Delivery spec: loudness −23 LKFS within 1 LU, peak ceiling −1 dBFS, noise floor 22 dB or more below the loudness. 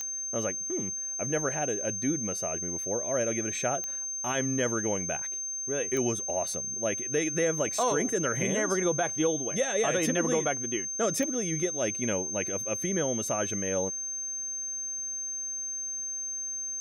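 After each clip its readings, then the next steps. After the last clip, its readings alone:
number of clicks 4; interfering tone 6,300 Hz; level of the tone −32 dBFS; integrated loudness −29.0 LKFS; sample peak −15.0 dBFS; target loudness −23.0 LKFS
→ click removal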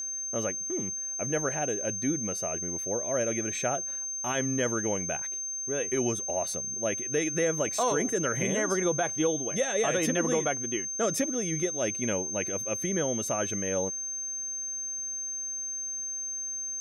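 number of clicks 0; interfering tone 6,300 Hz; level of the tone −32 dBFS
→ notch filter 6,300 Hz, Q 30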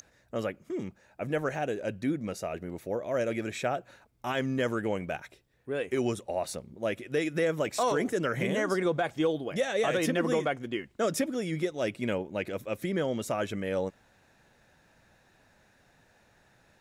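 interfering tone none found; integrated loudness −31.5 LKFS; sample peak −18.0 dBFS; target loudness −23.0 LKFS
→ level +8.5 dB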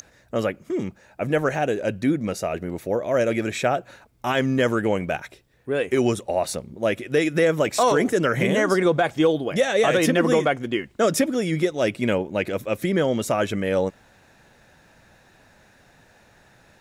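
integrated loudness −23.0 LKFS; sample peak −9.5 dBFS; background noise floor −56 dBFS

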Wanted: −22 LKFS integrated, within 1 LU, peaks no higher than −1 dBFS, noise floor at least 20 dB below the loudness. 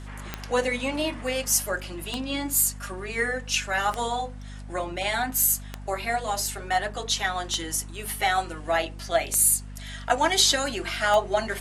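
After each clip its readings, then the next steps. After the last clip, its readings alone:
number of clicks 7; mains hum 50 Hz; hum harmonics up to 250 Hz; level of the hum −36 dBFS; integrated loudness −25.0 LKFS; sample peak −6.5 dBFS; target loudness −22.0 LKFS
→ click removal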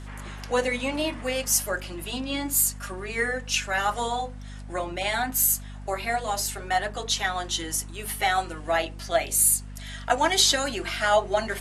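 number of clicks 0; mains hum 50 Hz; hum harmonics up to 250 Hz; level of the hum −36 dBFS
→ mains-hum notches 50/100/150/200/250 Hz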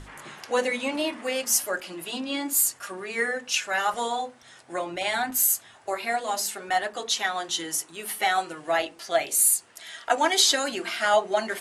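mains hum none found; integrated loudness −25.0 LKFS; sample peak −6.5 dBFS; target loudness −22.0 LKFS
→ level +3 dB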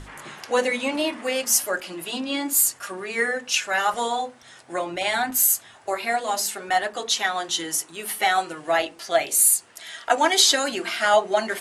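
integrated loudness −22.0 LKFS; sample peak −3.5 dBFS; background noise floor −50 dBFS

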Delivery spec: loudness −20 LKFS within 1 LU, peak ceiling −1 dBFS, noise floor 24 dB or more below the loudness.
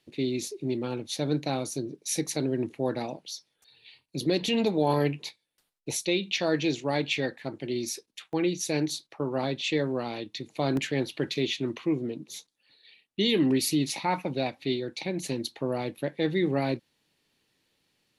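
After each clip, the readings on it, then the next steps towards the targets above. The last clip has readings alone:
number of dropouts 4; longest dropout 2.0 ms; integrated loudness −29.5 LKFS; sample peak −13.0 dBFS; target loudness −20.0 LKFS
→ repair the gap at 0:07.46/0:08.33/0:10.77/0:13.89, 2 ms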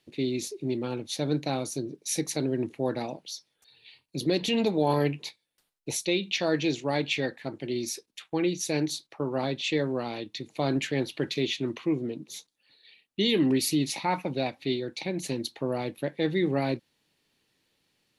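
number of dropouts 0; integrated loudness −29.5 LKFS; sample peak −13.0 dBFS; target loudness −20.0 LKFS
→ level +9.5 dB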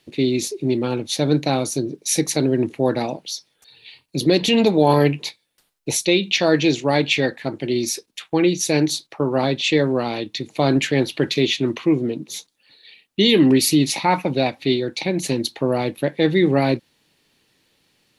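integrated loudness −20.0 LKFS; sample peak −3.5 dBFS; background noise floor −68 dBFS

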